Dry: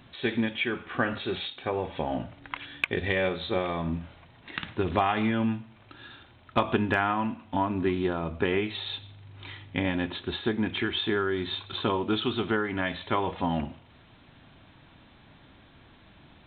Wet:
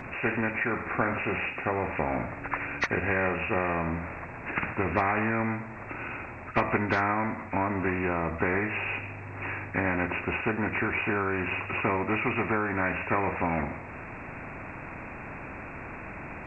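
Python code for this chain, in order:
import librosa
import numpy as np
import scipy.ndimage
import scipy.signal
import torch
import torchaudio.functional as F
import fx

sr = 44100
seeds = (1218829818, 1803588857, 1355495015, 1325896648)

y = fx.freq_compress(x, sr, knee_hz=1200.0, ratio=1.5)
y = fx.spectral_comp(y, sr, ratio=2.0)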